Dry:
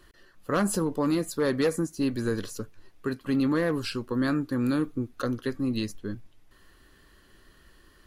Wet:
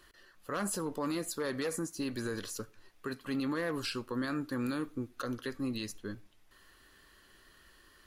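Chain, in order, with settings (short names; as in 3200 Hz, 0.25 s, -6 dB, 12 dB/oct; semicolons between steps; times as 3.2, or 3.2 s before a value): low shelf 480 Hz -9 dB; limiter -26.5 dBFS, peak gain reduction 8 dB; reverb RT60 0.35 s, pre-delay 25 ms, DRR 23 dB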